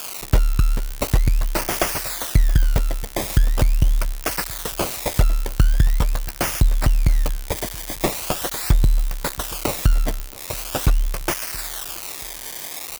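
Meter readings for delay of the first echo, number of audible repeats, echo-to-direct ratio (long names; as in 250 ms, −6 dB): 676 ms, 2, −21.0 dB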